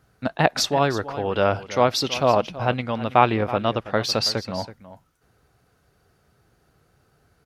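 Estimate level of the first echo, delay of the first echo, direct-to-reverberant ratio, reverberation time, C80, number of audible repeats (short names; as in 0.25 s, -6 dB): -15.0 dB, 0.327 s, none, none, none, 1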